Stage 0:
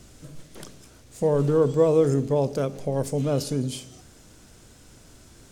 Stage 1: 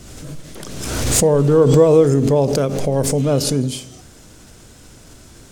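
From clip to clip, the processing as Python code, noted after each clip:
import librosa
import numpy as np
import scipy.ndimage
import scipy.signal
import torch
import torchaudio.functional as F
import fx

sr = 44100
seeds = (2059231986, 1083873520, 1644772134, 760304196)

y = fx.pre_swell(x, sr, db_per_s=34.0)
y = y * librosa.db_to_amplitude(7.0)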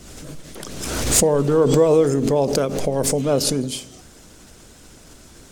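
y = fx.peak_eq(x, sr, hz=110.0, db=-7.0, octaves=0.76)
y = fx.hpss(y, sr, part='percussive', gain_db=5)
y = y * librosa.db_to_amplitude(-4.0)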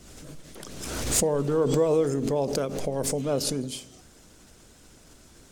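y = fx.quant_float(x, sr, bits=8)
y = y * librosa.db_to_amplitude(-7.5)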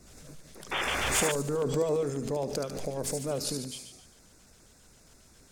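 y = fx.echo_wet_highpass(x, sr, ms=73, feedback_pct=57, hz=1900.0, wet_db=-5.0)
y = fx.spec_paint(y, sr, seeds[0], shape='noise', start_s=0.71, length_s=0.61, low_hz=290.0, high_hz=3600.0, level_db=-25.0)
y = fx.filter_lfo_notch(y, sr, shape='square', hz=7.4, low_hz=310.0, high_hz=3100.0, q=2.1)
y = y * librosa.db_to_amplitude(-5.0)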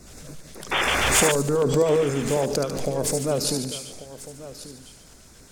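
y = x + 10.0 ** (-15.5 / 20.0) * np.pad(x, (int(1140 * sr / 1000.0), 0))[:len(x)]
y = y * librosa.db_to_amplitude(8.0)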